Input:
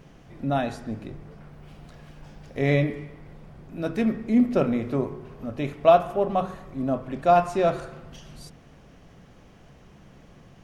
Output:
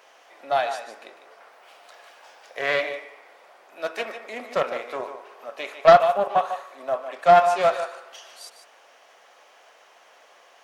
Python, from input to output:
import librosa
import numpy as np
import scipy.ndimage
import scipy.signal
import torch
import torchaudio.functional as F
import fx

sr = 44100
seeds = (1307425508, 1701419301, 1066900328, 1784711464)

y = scipy.signal.sosfilt(scipy.signal.butter(4, 600.0, 'highpass', fs=sr, output='sos'), x)
y = y + 10.0 ** (-10.0 / 20.0) * np.pad(y, (int(150 * sr / 1000.0), 0))[:len(y)]
y = fx.doppler_dist(y, sr, depth_ms=0.2)
y = F.gain(torch.from_numpy(y), 5.5).numpy()